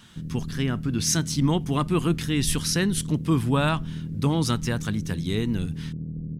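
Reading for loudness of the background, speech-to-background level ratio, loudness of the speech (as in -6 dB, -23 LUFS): -34.0 LUFS, 8.5 dB, -25.5 LUFS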